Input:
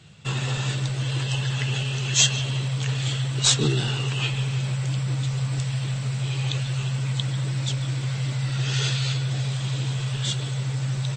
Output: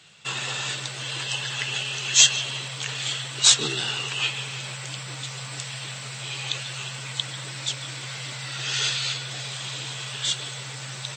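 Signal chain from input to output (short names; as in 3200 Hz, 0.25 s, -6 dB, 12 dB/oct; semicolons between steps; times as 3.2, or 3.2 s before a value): HPF 1100 Hz 6 dB/oct; gain +4 dB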